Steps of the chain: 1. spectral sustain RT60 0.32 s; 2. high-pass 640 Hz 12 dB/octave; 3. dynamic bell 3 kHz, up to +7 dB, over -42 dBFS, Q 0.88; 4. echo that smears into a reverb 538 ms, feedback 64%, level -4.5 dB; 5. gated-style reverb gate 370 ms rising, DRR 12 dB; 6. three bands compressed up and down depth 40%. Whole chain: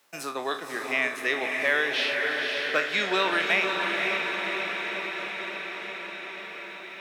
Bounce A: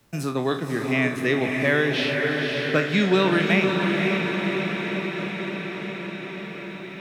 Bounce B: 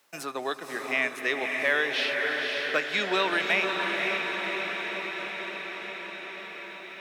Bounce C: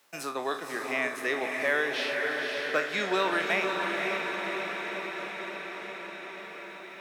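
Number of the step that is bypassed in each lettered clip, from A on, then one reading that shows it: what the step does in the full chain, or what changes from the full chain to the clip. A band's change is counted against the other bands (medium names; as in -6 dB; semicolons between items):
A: 2, 125 Hz band +22.5 dB; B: 1, loudness change -1.0 LU; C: 3, 4 kHz band -5.0 dB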